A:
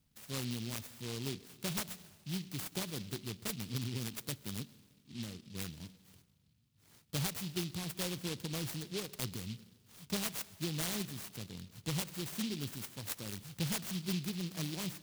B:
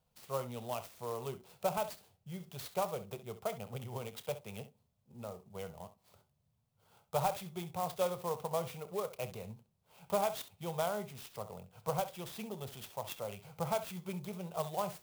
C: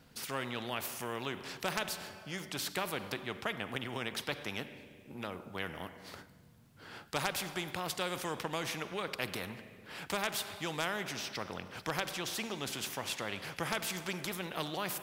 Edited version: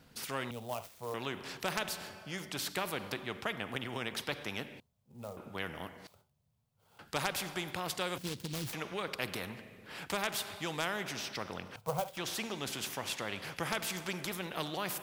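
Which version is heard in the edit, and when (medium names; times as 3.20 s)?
C
0.51–1.14 s: from B
4.80–5.37 s: from B
6.07–6.99 s: from B
8.18–8.73 s: from A
11.76–12.17 s: from B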